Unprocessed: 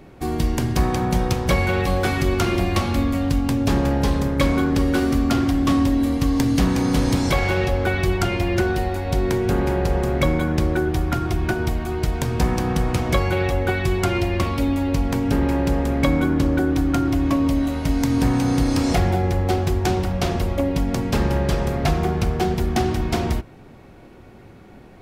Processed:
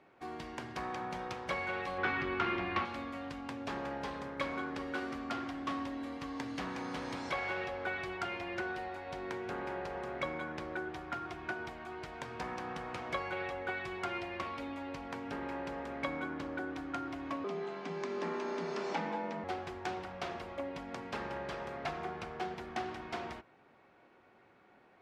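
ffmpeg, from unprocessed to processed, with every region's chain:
-filter_complex "[0:a]asettb=1/sr,asplit=3[a][b][c];[a]atrim=end=1.984[d];[b]atrim=start=1.98:end=2.85,asetpts=PTS-STARTPTS,afade=t=in:d=0.004:c=qsin,afade=t=out:st=0.866:d=0.004:c=qsin,lowpass=2.9k,equalizer=f=620:w=2.4:g=-9,acontrast=65[e];[c]atrim=start=2.846[f];[d][e]acrossfade=d=0.004:c1=hsin:c2=qsin[g];[g][f]acrossfade=d=0.004:c1=qsin:c2=hsin,asettb=1/sr,asplit=3[h][i][j];[h]atrim=end=17.444[k];[i]atrim=start=17.44:end=19.44,asetpts=PTS-STARTPTS,afade=t=in:d=0.004:c=qsin,afade=t=out:st=1.996:d=0.004:c=qsin,lowpass=f=7.5k:w=0.5412,lowpass=f=7.5k:w=1.3066,afreqshift=120[l];[j]atrim=start=19.436[m];[k][l]acrossfade=d=0.004:c1=hsin:c2=qsin[n];[n][m]acrossfade=d=0.004:c1=qsin:c2=hsin,lowpass=1.4k,aderivative,volume=6.5dB"

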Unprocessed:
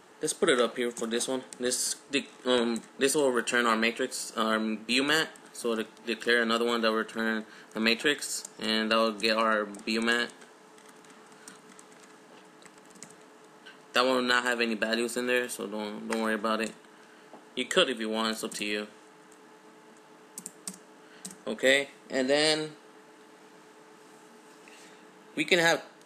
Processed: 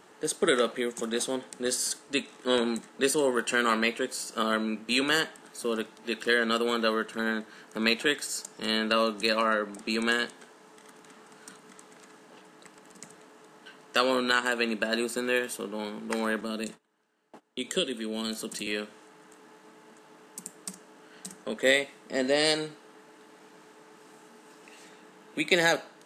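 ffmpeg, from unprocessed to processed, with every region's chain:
-filter_complex "[0:a]asettb=1/sr,asplit=3[a][b][c];[a]atrim=end=16.414[d];[b]atrim=start=16.41:end=18.67,asetpts=PTS-STARTPTS,afade=t=in:d=0.004:c=qsin,afade=t=out:st=2.256:d=0.004:c=qsin,agate=range=-21dB:threshold=-50dB:ratio=16:release=100:detection=peak,acrossover=split=450|3000[e][f][g];[f]acompressor=threshold=-45dB:ratio=3:attack=3.2:release=140:knee=2.83:detection=peak[h];[e][h][g]amix=inputs=3:normalize=0[i];[c]atrim=start=18.666[j];[d][i]acrossfade=d=0.004:c1=hsin:c2=qsin[k];[k][j]acrossfade=d=0.004:c1=qsin:c2=hsin"

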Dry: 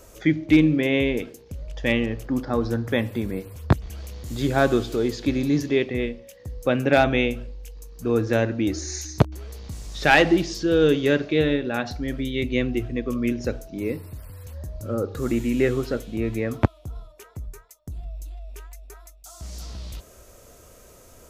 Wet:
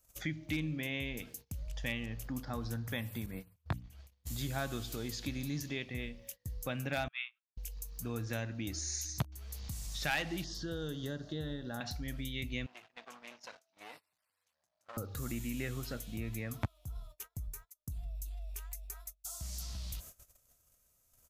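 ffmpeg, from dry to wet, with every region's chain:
-filter_complex "[0:a]asettb=1/sr,asplit=3[a][b][c];[a]atrim=end=3.264[d];[b]atrim=start=3.26:end=4.27,asetpts=PTS-STARTPTS,afade=t=in:d=0.004:c=qsin,afade=t=out:st=1.006:d=0.004:c=qsin,agate=range=-33dB:threshold=-29dB:ratio=3:release=100:detection=peak,bass=f=250:g=-2,treble=f=4k:g=-8,bandreject=f=60:t=h:w=6,bandreject=f=120:t=h:w=6,bandreject=f=180:t=h:w=6,bandreject=f=240:t=h:w=6,bandreject=f=300:t=h:w=6[e];[c]atrim=start=4.266[f];[d][e]acrossfade=d=0.004:c1=hsin:c2=qsin[g];[g][f]acrossfade=d=0.004:c1=qsin:c2=hsin,asettb=1/sr,asplit=3[h][i][j];[h]atrim=end=7.084[k];[i]atrim=start=7.08:end=7.57,asetpts=PTS-STARTPTS,afade=t=in:d=0.004:c=qsin,afade=t=out:st=0.486:d=0.004:c=qsin,agate=range=-25dB:threshold=-21dB:ratio=16:release=100:detection=peak,asuperpass=centerf=2000:order=8:qfactor=0.8[l];[j]atrim=start=7.566[m];[k][l]acrossfade=d=0.004:c1=hsin:c2=qsin[n];[n][m]acrossfade=d=0.004:c1=qsin:c2=hsin,asettb=1/sr,asplit=3[o][p][q];[o]atrim=end=10.444[r];[p]atrim=start=10.44:end=11.81,asetpts=PTS-STARTPTS,afade=t=in:d=0.004:c=qsin,afade=t=out:st=1.366:d=0.004:c=qsin,acrossover=split=760|4500[s][t][u];[s]acompressor=threshold=-19dB:ratio=4[v];[t]acompressor=threshold=-36dB:ratio=4[w];[u]acompressor=threshold=-52dB:ratio=4[x];[v][w][x]amix=inputs=3:normalize=0,asuperstop=centerf=2400:order=4:qfactor=1.9[y];[q]atrim=start=11.806[z];[r][y]acrossfade=d=0.004:c1=hsin:c2=qsin[aa];[aa][z]acrossfade=d=0.004:c1=qsin:c2=hsin,asettb=1/sr,asplit=3[ab][ac][ad];[ab]atrim=end=12.664[ae];[ac]atrim=start=12.66:end=14.97,asetpts=PTS-STARTPTS,afade=t=in:d=0.004:c=qsin,afade=t=out:st=2.306:d=0.004:c=qsin,acompressor=threshold=-26dB:ratio=2.5:attack=3.2:release=140:knee=1:detection=peak,aeval=exprs='clip(val(0),-1,0.0119)':c=same,highpass=750,lowpass=5.2k[af];[ad]atrim=start=14.966[ag];[ae][af]acrossfade=d=0.004:c1=hsin:c2=qsin[ah];[ah][ag]acrossfade=d=0.004:c1=qsin:c2=hsin,agate=range=-23dB:threshold=-45dB:ratio=16:detection=peak,firequalizer=gain_entry='entry(140,0);entry(390,-13);entry(700,-4);entry(2700,1);entry(13000,12)':delay=0.05:min_phase=1,acompressor=threshold=-38dB:ratio=2,volume=-3dB"

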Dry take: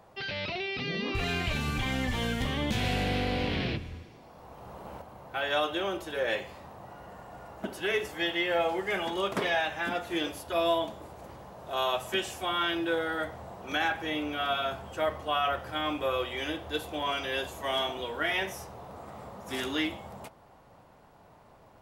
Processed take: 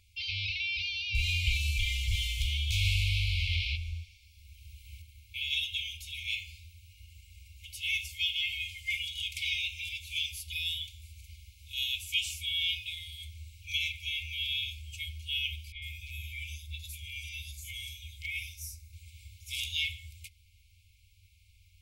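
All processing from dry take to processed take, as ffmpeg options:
-filter_complex "[0:a]asettb=1/sr,asplit=3[a][b][c];[a]atrim=end=15.724[d];[b]atrim=start=15.72:end=18.93,asetpts=PTS-STARTPTS,afade=t=in:d=0.004:c=qsin,afade=t=out:st=3.206:d=0.004:c=qsin,equalizer=f=3.1k:t=o:w=0.57:g=-11.5,acrossover=split=390|3800[e][f][g];[e]adelay=30[h];[g]adelay=100[i];[h][f][i]amix=inputs=3:normalize=0,atrim=end_sample=141561,volume=23.5dB,asoftclip=hard,volume=-23.5dB[j];[c]atrim=start=18.926[k];[d][j]acrossfade=d=0.004:c1=hsin:c2=qsin[l];[l][k]acrossfade=d=0.004:c1=qsin:c2=hsin,afftfilt=real='re*(1-between(b*sr/4096,100,2100))':imag='im*(1-between(b*sr/4096,100,2100))':win_size=4096:overlap=0.75,equalizer=f=220:w=0.57:g=6.5,volume=3.5dB"

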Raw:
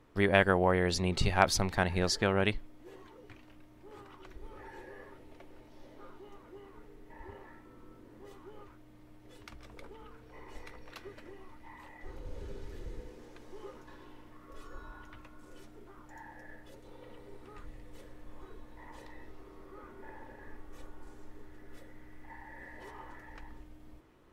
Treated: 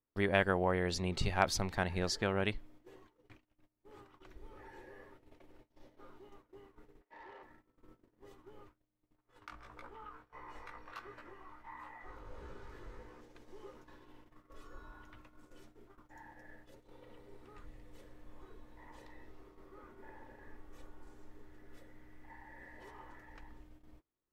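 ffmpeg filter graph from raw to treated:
-filter_complex "[0:a]asettb=1/sr,asplit=3[a][b][c];[a]atrim=end=7.014[d];[b]atrim=start=7.01:end=7.43,asetpts=PTS-STARTPTS,afade=t=in:d=0.004:c=qsin,afade=t=out:st=0.416:d=0.004:c=qsin,bass=f=250:g=-14,treble=f=4k:g=-13,asplit=2[e][f];[f]highpass=f=720:p=1,volume=14dB,asoftclip=type=tanh:threshold=-40dB[g];[e][g]amix=inputs=2:normalize=0,lowpass=f=5.7k:p=1,volume=-6dB[h];[c]atrim=start=7.426[i];[d][h]acrossfade=d=0.004:c1=hsin:c2=qsin[j];[j][i]acrossfade=d=0.004:c1=qsin:c2=hsin,asettb=1/sr,asplit=3[k][l][m];[k]atrim=end=9.164[n];[l]atrim=start=9.16:end=13.21,asetpts=PTS-STARTPTS,afade=t=in:d=0.004:c=qsin,afade=t=out:st=4.046:d=0.004:c=qsin,equalizer=f=1.2k:w=1:g=14.5,flanger=delay=16.5:depth=3:speed=1.5[o];[m]atrim=start=13.206[p];[n][o]acrossfade=d=0.004:c1=hsin:c2=qsin[q];[q][p]acrossfade=d=0.004:c1=qsin:c2=hsin,agate=range=-26dB:threshold=-51dB:ratio=16:detection=peak,equalizer=f=10k:w=3.6:g=-3,volume=-5dB"

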